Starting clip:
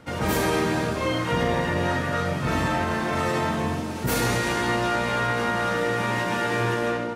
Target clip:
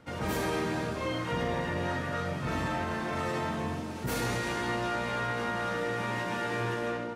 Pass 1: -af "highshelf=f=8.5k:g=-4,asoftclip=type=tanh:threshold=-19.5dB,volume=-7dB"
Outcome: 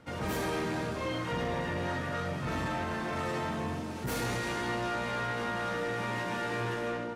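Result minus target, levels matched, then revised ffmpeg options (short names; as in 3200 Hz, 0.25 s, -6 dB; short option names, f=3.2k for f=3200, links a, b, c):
soft clip: distortion +11 dB
-af "highshelf=f=8.5k:g=-4,asoftclip=type=tanh:threshold=-12.5dB,volume=-7dB"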